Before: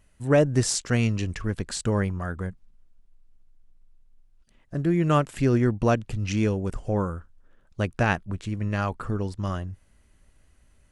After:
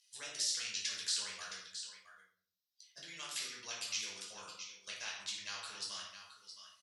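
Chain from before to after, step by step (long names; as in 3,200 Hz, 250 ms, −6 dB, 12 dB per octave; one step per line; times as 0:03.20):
spectral dynamics exaggerated over time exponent 1.5
parametric band 5,500 Hz +13 dB 0.67 octaves
downward compressor 5 to 1, threshold −29 dBFS, peak gain reduction 12.5 dB
brickwall limiter −27.5 dBFS, peak gain reduction 12 dB
tempo change 1.6×
four-pole ladder band-pass 4,900 Hz, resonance 40%
single-tap delay 667 ms −19 dB
rectangular room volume 590 cubic metres, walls furnished, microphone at 5.3 metres
every bin compressed towards the loudest bin 2 to 1
level +9 dB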